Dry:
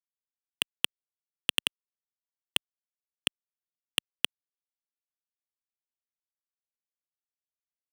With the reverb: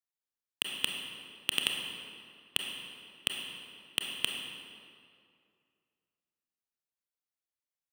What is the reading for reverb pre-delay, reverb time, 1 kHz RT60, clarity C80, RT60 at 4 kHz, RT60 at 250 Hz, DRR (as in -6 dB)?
26 ms, 2.3 s, 2.3 s, 4.0 dB, 1.6 s, 2.4 s, 1.5 dB